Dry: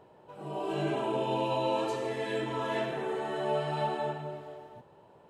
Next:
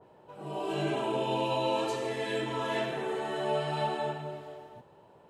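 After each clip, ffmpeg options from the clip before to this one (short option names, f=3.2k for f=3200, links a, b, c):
-af "adynamicequalizer=threshold=0.00316:dfrequency=2100:dqfactor=0.7:tfrequency=2100:tqfactor=0.7:attack=5:release=100:ratio=0.375:range=2:mode=boostabove:tftype=highshelf"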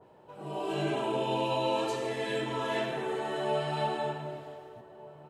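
-filter_complex "[0:a]asplit=2[a][b];[b]adelay=1516,volume=-18dB,highshelf=f=4k:g=-34.1[c];[a][c]amix=inputs=2:normalize=0"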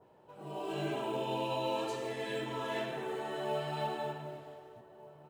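-af "acrusher=bits=8:mode=log:mix=0:aa=0.000001,volume=-5dB"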